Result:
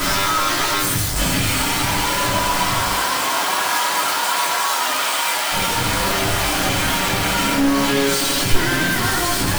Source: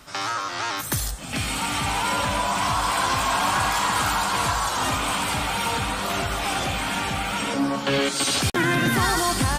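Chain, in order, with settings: one-bit comparator; 2.90–5.51 s: high-pass 260 Hz -> 690 Hz 12 dB/octave; simulated room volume 150 m³, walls furnished, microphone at 2.9 m; trim -1.5 dB

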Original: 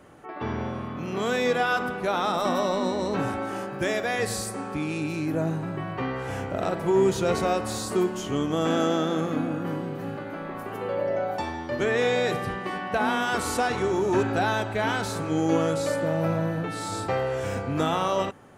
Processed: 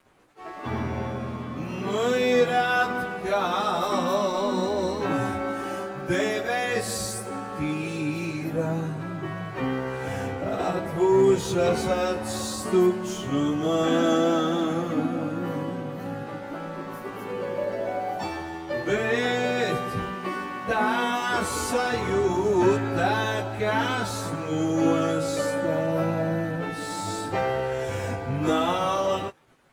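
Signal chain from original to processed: crossover distortion -49.5 dBFS; plain phase-vocoder stretch 1.6×; trim +4 dB

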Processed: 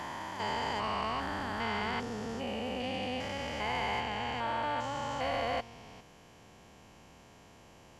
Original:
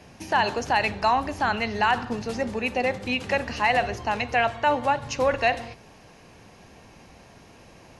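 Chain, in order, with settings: spectrogram pixelated in time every 400 ms; formant shift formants +2 st; trim -5 dB

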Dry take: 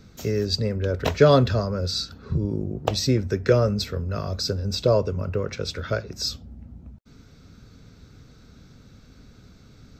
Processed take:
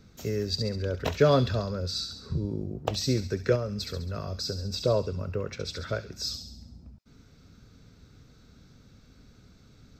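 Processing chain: feedback echo behind a high-pass 68 ms, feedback 54%, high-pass 3 kHz, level -5.5 dB; 3.55–4.74 s: compression, threshold -22 dBFS, peak gain reduction 6.5 dB; trim -5.5 dB

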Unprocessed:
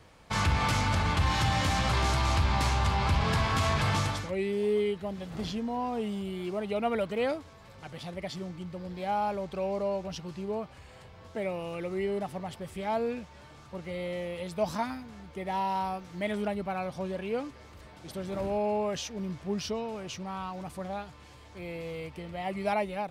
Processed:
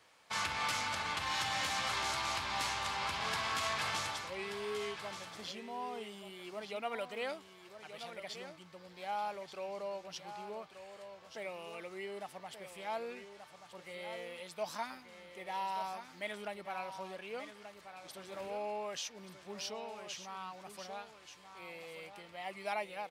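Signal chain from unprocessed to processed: high-pass 1.2 kHz 6 dB/octave; delay 1181 ms -10 dB; trim -3 dB

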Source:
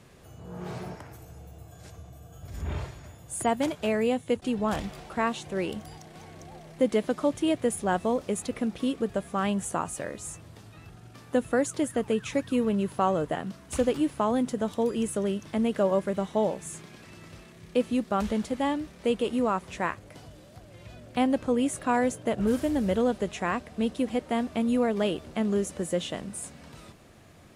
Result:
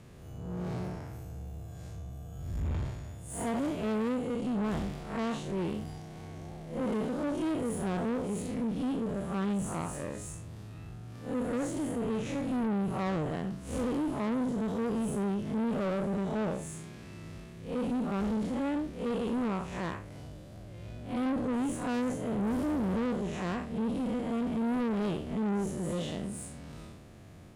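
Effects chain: spectral blur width 133 ms; bass shelf 370 Hz +8.5 dB; valve stage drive 28 dB, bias 0.45

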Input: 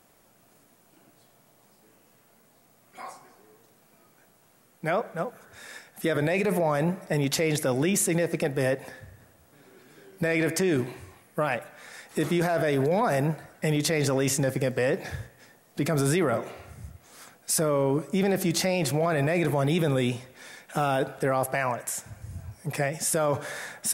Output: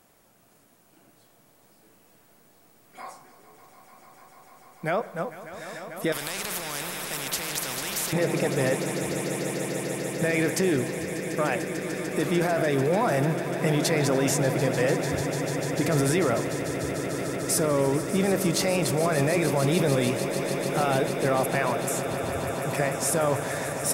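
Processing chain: echo with a slow build-up 148 ms, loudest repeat 8, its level -14 dB; 6.12–8.13 s: spectrum-flattening compressor 4:1

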